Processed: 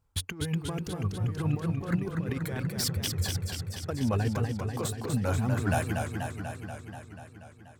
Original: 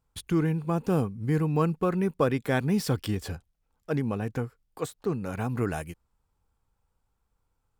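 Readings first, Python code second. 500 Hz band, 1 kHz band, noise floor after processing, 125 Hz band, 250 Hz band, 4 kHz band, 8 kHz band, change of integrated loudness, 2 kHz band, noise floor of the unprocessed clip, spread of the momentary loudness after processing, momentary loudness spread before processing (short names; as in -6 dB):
-6.0 dB, -3.0 dB, -52 dBFS, +0.5 dB, -4.0 dB, +6.5 dB, +7.5 dB, -2.5 dB, 0.0 dB, -77 dBFS, 13 LU, 11 LU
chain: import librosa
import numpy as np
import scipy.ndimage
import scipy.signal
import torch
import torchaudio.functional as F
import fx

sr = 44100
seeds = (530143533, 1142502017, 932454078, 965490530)

y = fx.dereverb_blind(x, sr, rt60_s=0.97)
y = fx.peak_eq(y, sr, hz=92.0, db=12.5, octaves=0.36)
y = fx.over_compress(y, sr, threshold_db=-31.0, ratio=-0.5)
y = fx.leveller(y, sr, passes=1)
y = fx.echo_warbled(y, sr, ms=242, feedback_pct=71, rate_hz=2.8, cents=121, wet_db=-5.0)
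y = F.gain(torch.from_numpy(y), -2.0).numpy()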